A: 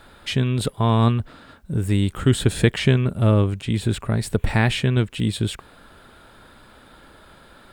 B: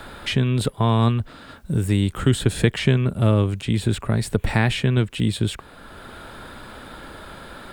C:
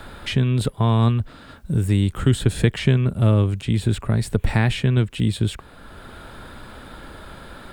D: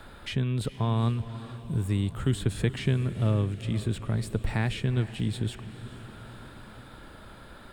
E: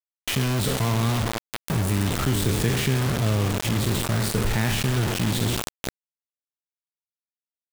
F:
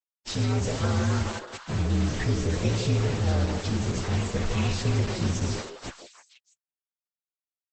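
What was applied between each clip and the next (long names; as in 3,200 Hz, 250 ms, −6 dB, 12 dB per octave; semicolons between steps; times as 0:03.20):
multiband upward and downward compressor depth 40%
low-shelf EQ 150 Hz +6 dB; level −2 dB
feedback delay with all-pass diffusion 452 ms, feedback 58%, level −14 dB; level −8.5 dB
peak hold with a decay on every bin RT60 0.72 s; bit reduction 5 bits; envelope flattener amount 50%
partials spread apart or drawn together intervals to 120%; echo through a band-pass that steps 159 ms, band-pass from 500 Hz, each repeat 1.4 octaves, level −3 dB; Opus 12 kbit/s 48,000 Hz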